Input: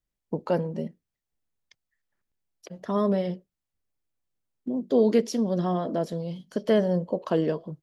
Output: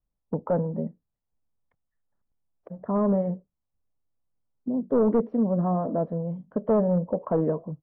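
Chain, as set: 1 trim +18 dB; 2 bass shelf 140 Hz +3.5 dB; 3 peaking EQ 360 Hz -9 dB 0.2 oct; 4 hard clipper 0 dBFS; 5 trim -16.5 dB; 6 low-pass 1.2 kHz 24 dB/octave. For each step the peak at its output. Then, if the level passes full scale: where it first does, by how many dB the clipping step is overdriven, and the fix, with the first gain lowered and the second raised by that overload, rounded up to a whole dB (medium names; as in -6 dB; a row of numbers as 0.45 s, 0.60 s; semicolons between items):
+7.5 dBFS, +8.5 dBFS, +7.5 dBFS, 0.0 dBFS, -16.5 dBFS, -15.5 dBFS; step 1, 7.5 dB; step 1 +10 dB, step 5 -8.5 dB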